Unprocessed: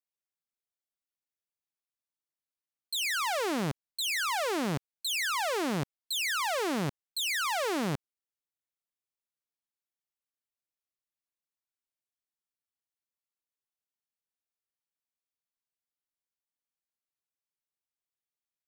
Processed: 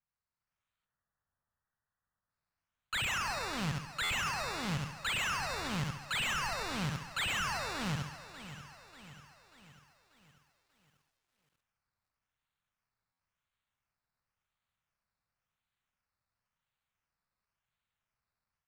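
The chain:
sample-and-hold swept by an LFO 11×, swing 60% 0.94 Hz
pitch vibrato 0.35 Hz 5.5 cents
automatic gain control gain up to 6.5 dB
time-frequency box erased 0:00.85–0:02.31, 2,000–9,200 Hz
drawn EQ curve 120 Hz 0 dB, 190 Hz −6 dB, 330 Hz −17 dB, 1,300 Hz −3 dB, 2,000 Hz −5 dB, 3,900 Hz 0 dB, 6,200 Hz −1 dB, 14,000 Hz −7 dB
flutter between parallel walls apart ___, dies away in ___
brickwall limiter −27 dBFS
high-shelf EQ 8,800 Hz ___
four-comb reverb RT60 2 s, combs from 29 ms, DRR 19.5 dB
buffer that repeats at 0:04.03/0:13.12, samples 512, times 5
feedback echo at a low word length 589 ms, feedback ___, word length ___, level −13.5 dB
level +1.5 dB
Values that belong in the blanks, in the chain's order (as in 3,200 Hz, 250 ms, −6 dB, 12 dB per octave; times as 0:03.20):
11.8 metres, 0.44 s, −10 dB, 55%, 11 bits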